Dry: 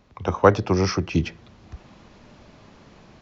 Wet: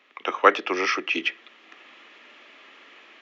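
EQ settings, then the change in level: steep high-pass 280 Hz 36 dB/octave; high-order bell 2.1 kHz +15 dB; band-stop 1.5 kHz, Q 5.9; -4.5 dB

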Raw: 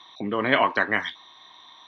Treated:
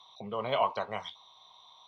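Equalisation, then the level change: static phaser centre 720 Hz, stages 4; -4.5 dB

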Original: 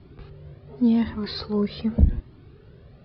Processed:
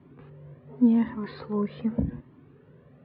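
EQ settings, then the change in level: cabinet simulation 120–3000 Hz, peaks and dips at 150 Hz +7 dB, 260 Hz +10 dB, 510 Hz +7 dB, 1 kHz +9 dB, 1.8 kHz +5 dB; -7.0 dB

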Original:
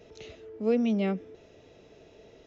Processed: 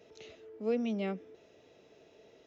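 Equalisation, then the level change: high-pass 230 Hz 6 dB/octave; -4.5 dB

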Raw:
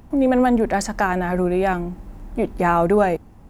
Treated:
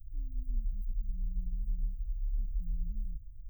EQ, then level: inverse Chebyshev band-stop 420–8100 Hz, stop band 80 dB; peaking EQ 66 Hz -13 dB 0.75 oct; +6.0 dB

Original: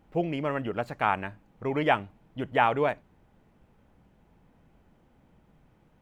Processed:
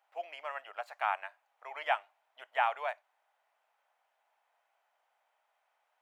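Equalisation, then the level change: Chebyshev high-pass 670 Hz, order 4; -5.5 dB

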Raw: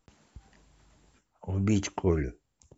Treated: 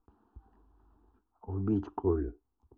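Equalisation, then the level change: low-pass 1.3 kHz 12 dB/octave; distance through air 130 m; static phaser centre 570 Hz, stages 6; 0.0 dB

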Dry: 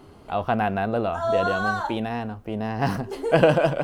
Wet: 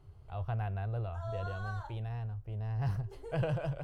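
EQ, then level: FFT filter 120 Hz 0 dB, 240 Hz -29 dB, 380 Hz -19 dB; 0.0 dB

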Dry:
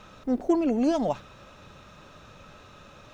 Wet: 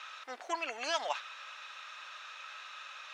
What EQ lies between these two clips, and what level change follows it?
high-pass 1.3 kHz 12 dB/octave; band-pass filter 2.1 kHz, Q 0.61; +9.0 dB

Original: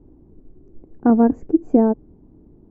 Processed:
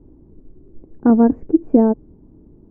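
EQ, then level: distance through air 350 m; band-stop 740 Hz, Q 12; +2.5 dB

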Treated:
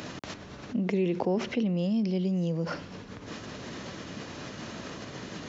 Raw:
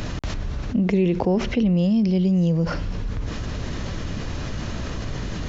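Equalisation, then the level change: high-pass 200 Hz 12 dB/octave; -5.5 dB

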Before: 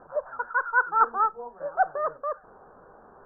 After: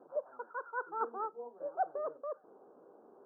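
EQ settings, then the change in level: ladder band-pass 380 Hz, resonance 40%; +5.5 dB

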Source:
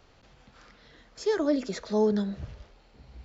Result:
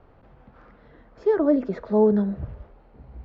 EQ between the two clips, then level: low-pass 1.2 kHz 12 dB/octave; +6.0 dB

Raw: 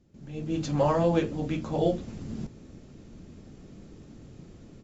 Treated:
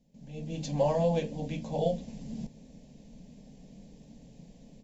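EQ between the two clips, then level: static phaser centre 350 Hz, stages 6; -1.0 dB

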